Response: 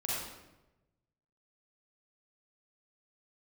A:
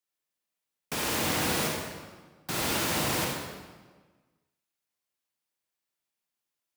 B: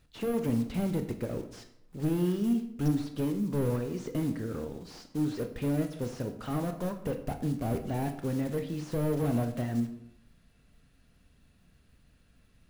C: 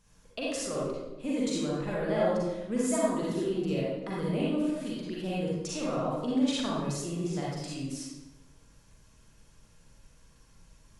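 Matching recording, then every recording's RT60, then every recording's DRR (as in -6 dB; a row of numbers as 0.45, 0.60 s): C; 1.4, 0.75, 1.0 s; -2.0, 6.5, -6.5 dB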